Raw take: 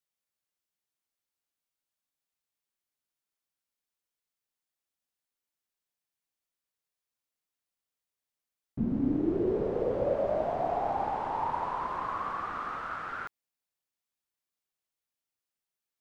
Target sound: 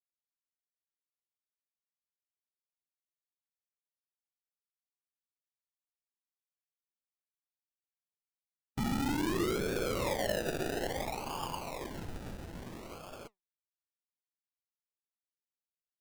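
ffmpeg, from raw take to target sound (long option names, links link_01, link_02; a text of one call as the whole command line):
ffmpeg -i in.wav -filter_complex "[0:a]tiltshelf=frequency=700:gain=8,afftfilt=real='re*gte(hypot(re,im),0.0126)':imag='im*gte(hypot(re,im),0.0126)':win_size=1024:overlap=0.75,acrossover=split=1100[link_01][link_02];[link_01]alimiter=limit=-21.5dB:level=0:latency=1:release=12[link_03];[link_03][link_02]amix=inputs=2:normalize=0,acrusher=samples=32:mix=1:aa=0.000001:lfo=1:lforange=19.2:lforate=0.59,aeval=exprs='0.1*(cos(1*acos(clip(val(0)/0.1,-1,1)))-cos(1*PI/2))+0.01*(cos(3*acos(clip(val(0)/0.1,-1,1)))-cos(3*PI/2))+0.000891*(cos(6*acos(clip(val(0)/0.1,-1,1)))-cos(6*PI/2))':channel_layout=same,flanger=delay=0.7:depth=5.4:regen=80:speed=1:shape=sinusoidal,volume=1dB" out.wav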